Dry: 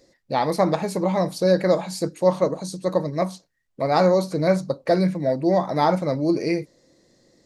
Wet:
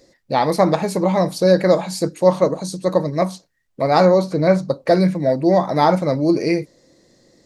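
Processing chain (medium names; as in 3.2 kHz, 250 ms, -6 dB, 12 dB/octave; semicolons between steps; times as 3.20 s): 4.05–4.69 s: treble shelf 6.8 kHz -11.5 dB; trim +4.5 dB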